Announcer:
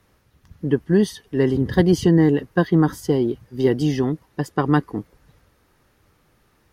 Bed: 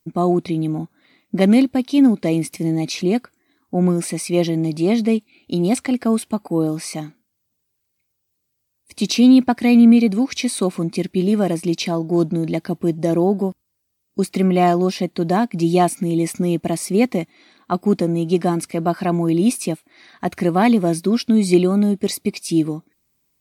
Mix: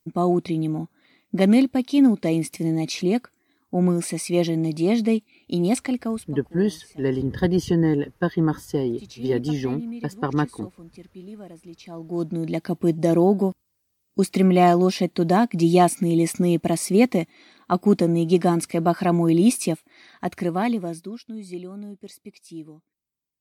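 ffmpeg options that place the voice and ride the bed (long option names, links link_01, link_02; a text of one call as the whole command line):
ffmpeg -i stem1.wav -i stem2.wav -filter_complex "[0:a]adelay=5650,volume=-4.5dB[link_01];[1:a]volume=19dB,afade=type=out:start_time=5.79:duration=0.58:silence=0.105925,afade=type=in:start_time=11.83:duration=1.11:silence=0.0794328,afade=type=out:start_time=19.63:duration=1.56:silence=0.105925[link_02];[link_01][link_02]amix=inputs=2:normalize=0" out.wav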